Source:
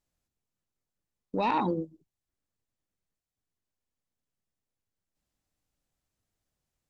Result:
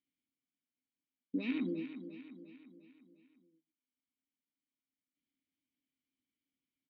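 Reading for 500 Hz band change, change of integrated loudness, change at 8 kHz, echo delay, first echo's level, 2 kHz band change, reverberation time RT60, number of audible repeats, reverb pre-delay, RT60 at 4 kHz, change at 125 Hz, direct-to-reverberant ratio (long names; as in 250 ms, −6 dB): −12.0 dB, −9.5 dB, can't be measured, 351 ms, −11.0 dB, −6.5 dB, no reverb audible, 5, no reverb audible, no reverb audible, −11.0 dB, no reverb audible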